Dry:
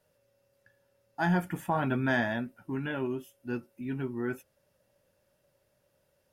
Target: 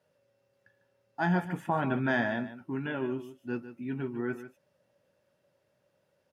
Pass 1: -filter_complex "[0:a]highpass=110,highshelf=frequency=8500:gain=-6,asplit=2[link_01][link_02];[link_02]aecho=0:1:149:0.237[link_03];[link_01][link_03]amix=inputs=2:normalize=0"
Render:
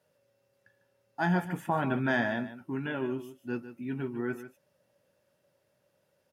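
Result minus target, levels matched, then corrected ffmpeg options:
8,000 Hz band +4.5 dB
-filter_complex "[0:a]highpass=110,highshelf=frequency=8500:gain=-16,asplit=2[link_01][link_02];[link_02]aecho=0:1:149:0.237[link_03];[link_01][link_03]amix=inputs=2:normalize=0"

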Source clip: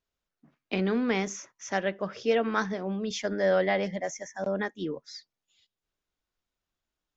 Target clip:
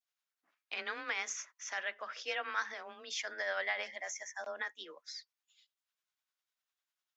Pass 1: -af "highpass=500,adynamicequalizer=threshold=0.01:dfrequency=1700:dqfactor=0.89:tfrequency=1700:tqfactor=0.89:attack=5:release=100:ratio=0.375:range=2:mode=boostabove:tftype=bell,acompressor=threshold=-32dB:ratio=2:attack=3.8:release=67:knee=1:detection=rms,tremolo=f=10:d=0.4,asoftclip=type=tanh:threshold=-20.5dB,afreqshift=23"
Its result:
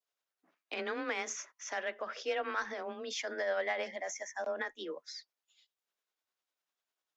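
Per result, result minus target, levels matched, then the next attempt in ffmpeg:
soft clipping: distortion +25 dB; 500 Hz band +6.0 dB
-af "highpass=500,adynamicequalizer=threshold=0.01:dfrequency=1700:dqfactor=0.89:tfrequency=1700:tqfactor=0.89:attack=5:release=100:ratio=0.375:range=2:mode=boostabove:tftype=bell,acompressor=threshold=-32dB:ratio=2:attack=3.8:release=67:knee=1:detection=rms,tremolo=f=10:d=0.4,asoftclip=type=tanh:threshold=-8.5dB,afreqshift=23"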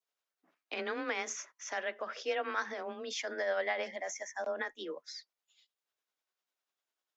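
500 Hz band +6.0 dB
-af "highpass=1100,adynamicequalizer=threshold=0.01:dfrequency=1700:dqfactor=0.89:tfrequency=1700:tqfactor=0.89:attack=5:release=100:ratio=0.375:range=2:mode=boostabove:tftype=bell,acompressor=threshold=-32dB:ratio=2:attack=3.8:release=67:knee=1:detection=rms,tremolo=f=10:d=0.4,asoftclip=type=tanh:threshold=-8.5dB,afreqshift=23"

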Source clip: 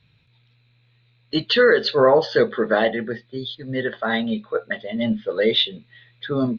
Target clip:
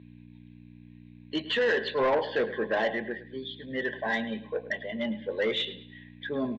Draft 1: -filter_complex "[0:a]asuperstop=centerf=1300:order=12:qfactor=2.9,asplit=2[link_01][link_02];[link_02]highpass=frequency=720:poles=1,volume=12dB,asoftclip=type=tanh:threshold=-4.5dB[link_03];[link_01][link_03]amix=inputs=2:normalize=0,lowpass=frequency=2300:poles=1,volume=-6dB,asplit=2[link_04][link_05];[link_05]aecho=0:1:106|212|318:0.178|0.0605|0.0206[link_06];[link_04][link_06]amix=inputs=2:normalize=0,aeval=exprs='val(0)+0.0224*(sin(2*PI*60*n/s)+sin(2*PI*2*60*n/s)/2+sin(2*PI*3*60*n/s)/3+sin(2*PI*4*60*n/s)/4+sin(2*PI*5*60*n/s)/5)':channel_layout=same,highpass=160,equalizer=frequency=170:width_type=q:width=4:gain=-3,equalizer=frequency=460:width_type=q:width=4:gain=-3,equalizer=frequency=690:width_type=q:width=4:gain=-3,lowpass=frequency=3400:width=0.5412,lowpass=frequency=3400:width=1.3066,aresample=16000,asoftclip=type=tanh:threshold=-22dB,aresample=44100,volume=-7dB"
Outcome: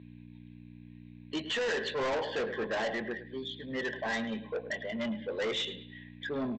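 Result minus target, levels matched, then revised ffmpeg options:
soft clipping: distortion +10 dB
-filter_complex "[0:a]asuperstop=centerf=1300:order=12:qfactor=2.9,asplit=2[link_01][link_02];[link_02]highpass=frequency=720:poles=1,volume=12dB,asoftclip=type=tanh:threshold=-4.5dB[link_03];[link_01][link_03]amix=inputs=2:normalize=0,lowpass=frequency=2300:poles=1,volume=-6dB,asplit=2[link_04][link_05];[link_05]aecho=0:1:106|212|318:0.178|0.0605|0.0206[link_06];[link_04][link_06]amix=inputs=2:normalize=0,aeval=exprs='val(0)+0.0224*(sin(2*PI*60*n/s)+sin(2*PI*2*60*n/s)/2+sin(2*PI*3*60*n/s)/3+sin(2*PI*4*60*n/s)/4+sin(2*PI*5*60*n/s)/5)':channel_layout=same,highpass=160,equalizer=frequency=170:width_type=q:width=4:gain=-3,equalizer=frequency=460:width_type=q:width=4:gain=-3,equalizer=frequency=690:width_type=q:width=4:gain=-3,lowpass=frequency=3400:width=0.5412,lowpass=frequency=3400:width=1.3066,aresample=16000,asoftclip=type=tanh:threshold=-12dB,aresample=44100,volume=-7dB"

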